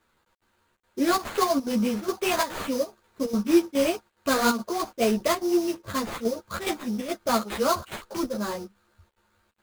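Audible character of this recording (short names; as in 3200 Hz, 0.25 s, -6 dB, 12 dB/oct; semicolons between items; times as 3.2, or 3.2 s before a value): aliases and images of a low sample rate 5600 Hz, jitter 20%; chopped level 2.4 Hz, depth 65%, duty 80%; a quantiser's noise floor 12-bit, dither none; a shimmering, thickened sound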